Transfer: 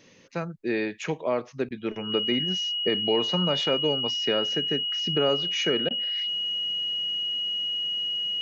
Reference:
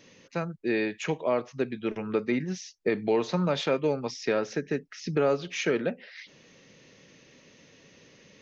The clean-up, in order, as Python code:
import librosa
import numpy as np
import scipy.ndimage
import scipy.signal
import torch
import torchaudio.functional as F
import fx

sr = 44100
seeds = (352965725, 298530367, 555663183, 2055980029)

y = fx.notch(x, sr, hz=2900.0, q=30.0)
y = fx.fix_interpolate(y, sr, at_s=(1.69, 5.89), length_ms=15.0)